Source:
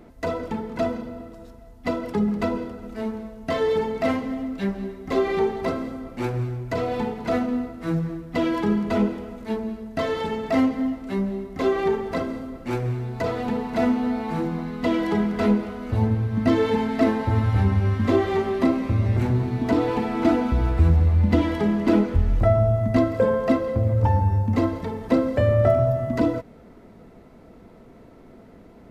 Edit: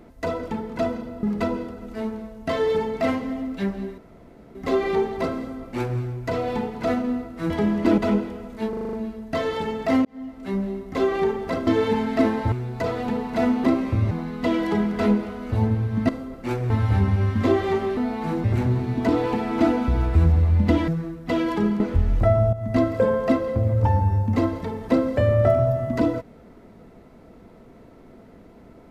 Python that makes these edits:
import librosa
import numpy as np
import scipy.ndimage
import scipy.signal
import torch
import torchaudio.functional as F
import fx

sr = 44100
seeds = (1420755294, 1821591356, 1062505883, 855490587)

y = fx.edit(x, sr, fx.cut(start_s=1.23, length_s=1.01),
    fx.insert_room_tone(at_s=4.99, length_s=0.57),
    fx.swap(start_s=7.94, length_s=0.92, other_s=21.52, other_length_s=0.48),
    fx.stutter(start_s=9.57, slice_s=0.04, count=7),
    fx.fade_in_span(start_s=10.69, length_s=0.56),
    fx.swap(start_s=12.31, length_s=0.61, other_s=16.49, other_length_s=0.85),
    fx.swap(start_s=14.04, length_s=0.47, other_s=18.61, other_length_s=0.47),
    fx.fade_in_from(start_s=22.73, length_s=0.29, floor_db=-13.0), tone=tone)